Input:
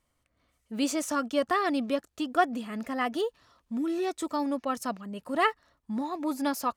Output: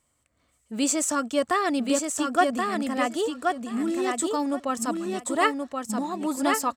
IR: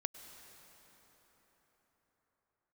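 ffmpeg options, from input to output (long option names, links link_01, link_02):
-filter_complex "[0:a]highpass=47,equalizer=frequency=7800:width_type=o:width=0.34:gain=13.5,asplit=2[link_01][link_02];[link_02]aecho=0:1:1077|2154|3231:0.631|0.107|0.0182[link_03];[link_01][link_03]amix=inputs=2:normalize=0,volume=2.5dB"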